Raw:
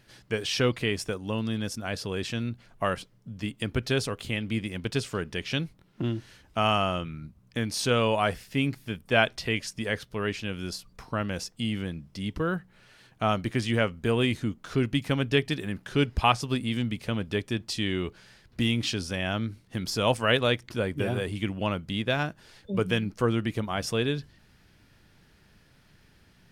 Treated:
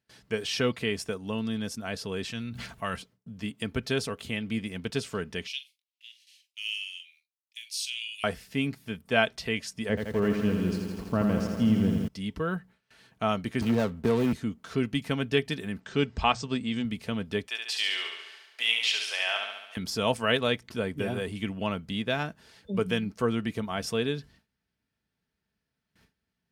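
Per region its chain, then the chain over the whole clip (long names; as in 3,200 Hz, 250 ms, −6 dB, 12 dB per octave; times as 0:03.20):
0:02.32–0:02.96: parametric band 430 Hz −7 dB 2.3 octaves + level that may fall only so fast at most 23 dB per second
0:05.47–0:08.24: Butterworth high-pass 2,400 Hz 48 dB per octave + flutter between parallel walls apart 7.4 metres, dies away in 0.2 s
0:09.89–0:12.08: tilt shelving filter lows +8 dB, about 1,100 Hz + slack as between gear wheels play −47.5 dBFS + feedback echo at a low word length 82 ms, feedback 80%, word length 8 bits, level −6 dB
0:13.61–0:14.33: running median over 25 samples + leveller curve on the samples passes 1 + multiband upward and downward compressor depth 70%
0:15.80–0:16.85: linear-phase brick-wall low-pass 8,600 Hz + mains-hum notches 60/120/180 Hz
0:17.47–0:19.77: high-pass filter 630 Hz 24 dB per octave + parametric band 2,700 Hz +7.5 dB 1.1 octaves + repeating echo 70 ms, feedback 60%, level −4.5 dB
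whole clip: high-pass filter 45 Hz 24 dB per octave; noise gate with hold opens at −47 dBFS; comb filter 4.5 ms, depth 35%; level −2.5 dB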